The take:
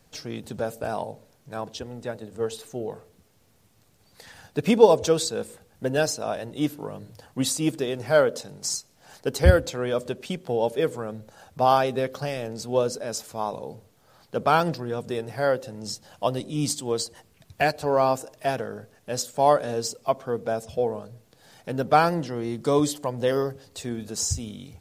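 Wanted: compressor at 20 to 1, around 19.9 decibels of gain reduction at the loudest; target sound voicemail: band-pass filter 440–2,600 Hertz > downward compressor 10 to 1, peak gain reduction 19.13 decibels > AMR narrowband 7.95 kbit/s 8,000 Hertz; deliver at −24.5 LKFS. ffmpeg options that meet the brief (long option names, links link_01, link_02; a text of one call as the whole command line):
ffmpeg -i in.wav -af "acompressor=threshold=-28dB:ratio=20,highpass=440,lowpass=2600,acompressor=threshold=-46dB:ratio=10,volume=28dB" -ar 8000 -c:a libopencore_amrnb -b:a 7950 out.amr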